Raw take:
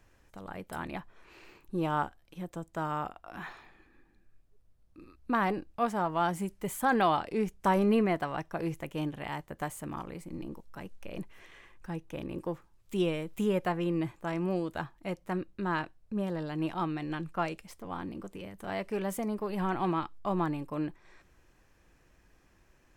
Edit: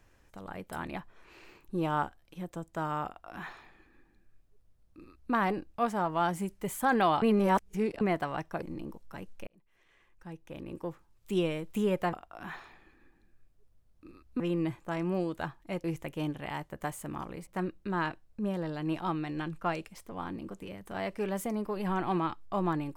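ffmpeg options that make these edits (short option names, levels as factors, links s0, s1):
-filter_complex "[0:a]asplit=9[s0][s1][s2][s3][s4][s5][s6][s7][s8];[s0]atrim=end=7.222[s9];[s1]atrim=start=7.218:end=8.012,asetpts=PTS-STARTPTS,areverse[s10];[s2]atrim=start=8.008:end=8.622[s11];[s3]atrim=start=10.248:end=11.1,asetpts=PTS-STARTPTS,afade=t=out:st=0.848:d=0.004:c=hsin[s12];[s4]atrim=start=11.1:end=13.762,asetpts=PTS-STARTPTS,afade=t=in:d=1.86[s13];[s5]atrim=start=3.058:end=5.332[s14];[s6]atrim=start=13.758:end=15.202[s15];[s7]atrim=start=8.618:end=10.252[s16];[s8]atrim=start=15.198[s17];[s9][s10]acrossfade=d=0.004:c1=hsin:c2=hsin[s18];[s18][s11]acrossfade=d=0.004:c1=hsin:c2=hsin[s19];[s12][s13]concat=n=2:v=0:a=1[s20];[s19][s20]acrossfade=d=0.004:c1=hsin:c2=hsin[s21];[s21][s14]acrossfade=d=0.004:c1=hsin:c2=hsin[s22];[s22][s15]acrossfade=d=0.004:c1=hsin:c2=hsin[s23];[s23][s16]acrossfade=d=0.004:c1=hsin:c2=hsin[s24];[s24][s17]acrossfade=d=0.004:c1=hsin:c2=hsin"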